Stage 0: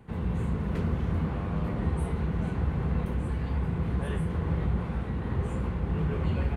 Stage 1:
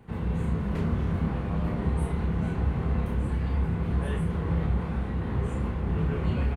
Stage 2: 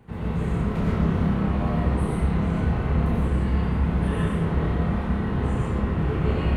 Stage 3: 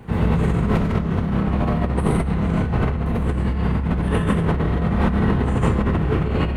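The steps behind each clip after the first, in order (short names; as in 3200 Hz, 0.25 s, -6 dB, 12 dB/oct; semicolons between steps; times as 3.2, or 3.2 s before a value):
doubler 30 ms -4.5 dB
digital reverb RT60 1.2 s, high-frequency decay 0.75×, pre-delay 50 ms, DRR -5 dB
negative-ratio compressor -27 dBFS, ratio -1; gain +7.5 dB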